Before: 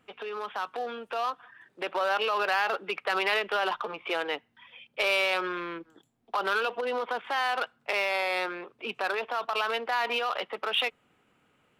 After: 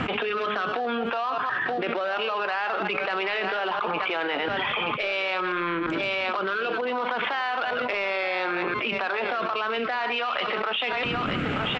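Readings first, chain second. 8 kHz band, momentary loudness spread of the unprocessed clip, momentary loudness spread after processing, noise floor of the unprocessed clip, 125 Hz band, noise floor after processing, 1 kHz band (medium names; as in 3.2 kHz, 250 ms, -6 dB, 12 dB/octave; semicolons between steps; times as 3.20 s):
no reading, 10 LU, 1 LU, -70 dBFS, +19.0 dB, -29 dBFS, +3.5 dB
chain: chunks repeated in reverse 115 ms, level -13 dB; reverse; upward compressor, threshold -32 dBFS; reverse; peaking EQ 460 Hz -5.5 dB 0.73 oct; de-hum 210.2 Hz, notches 35; rotary cabinet horn 0.65 Hz; distance through air 200 m; on a send: delay 927 ms -17 dB; on the sum: level flattener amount 100%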